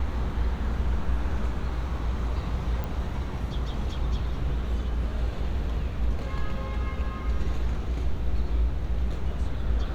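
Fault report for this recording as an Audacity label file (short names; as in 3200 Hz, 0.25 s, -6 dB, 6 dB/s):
2.840000	2.840000	pop -20 dBFS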